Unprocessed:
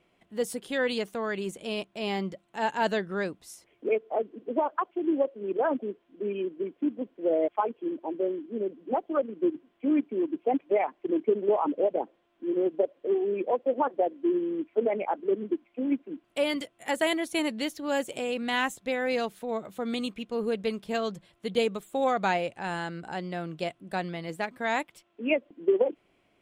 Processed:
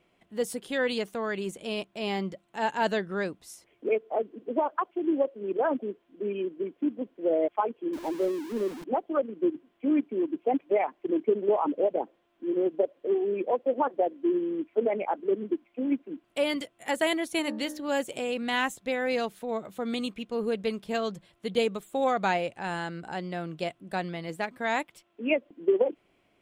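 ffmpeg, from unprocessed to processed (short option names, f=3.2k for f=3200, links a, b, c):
-filter_complex "[0:a]asettb=1/sr,asplit=3[a][b][c];[a]atrim=end=7.934[d];[b]atrim=start=7.93:end=8.84,asetpts=PTS-STARTPTS,afade=t=in:d=0.004:c=qsin,afade=t=out:st=0.906:d=0.004:c=qsin,aeval=exprs='val(0)+0.5*0.015*sgn(val(0))':c=same[e];[c]atrim=start=8.836[f];[d][e]acrossfade=d=0.004:c1=hsin:c2=qsin[g];[g][f]acrossfade=d=0.004:c1=qsin:c2=hsin,asettb=1/sr,asplit=3[h][i][j];[h]atrim=end=17.394[k];[i]atrim=start=17.39:end=17.89,asetpts=PTS-STARTPTS,afade=t=in:d=0.004:c=qsin,afade=t=out:st=0.496:d=0.004:c=qsin,bandreject=f=60.68:t=h:w=4,bandreject=f=121.36:t=h:w=4,bandreject=f=182.04:t=h:w=4,bandreject=f=242.72:t=h:w=4,bandreject=f=303.4:t=h:w=4,bandreject=f=364.08:t=h:w=4,bandreject=f=424.76:t=h:w=4,bandreject=f=485.44:t=h:w=4,bandreject=f=546.12:t=h:w=4,bandreject=f=606.8:t=h:w=4,bandreject=f=667.48:t=h:w=4,bandreject=f=728.16:t=h:w=4,bandreject=f=788.84:t=h:w=4,bandreject=f=849.52:t=h:w=4,bandreject=f=910.2:t=h:w=4,bandreject=f=970.88:t=h:w=4,bandreject=f=1.03156k:t=h:w=4,bandreject=f=1.09224k:t=h:w=4,bandreject=f=1.15292k:t=h:w=4,bandreject=f=1.2136k:t=h:w=4,bandreject=f=1.27428k:t=h:w=4,bandreject=f=1.33496k:t=h:w=4,bandreject=f=1.39564k:t=h:w=4,bandreject=f=1.45632k:t=h:w=4,bandreject=f=1.517k:t=h:w=4,bandreject=f=1.57768k:t=h:w=4,bandreject=f=1.63836k:t=h:w=4,bandreject=f=1.69904k:t=h:w=4,bandreject=f=1.75972k:t=h:w=4,bandreject=f=1.8204k:t=h:w=4,bandreject=f=1.88108k:t=h:w=4[l];[j]atrim=start=17.886[m];[k][l]acrossfade=d=0.004:c1=hsin:c2=qsin[n];[n][m]acrossfade=d=0.004:c1=qsin:c2=hsin"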